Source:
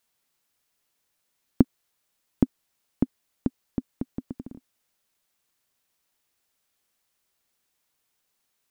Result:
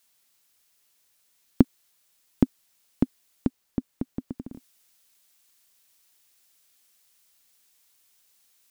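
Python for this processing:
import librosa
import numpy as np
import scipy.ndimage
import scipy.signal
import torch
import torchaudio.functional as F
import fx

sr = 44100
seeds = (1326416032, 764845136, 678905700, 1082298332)

y = fx.high_shelf(x, sr, hz=2100.0, db=fx.steps((0.0, 8.5), (3.47, 2.5), (4.52, 11.5)))
y = y * 10.0 ** (1.0 / 20.0)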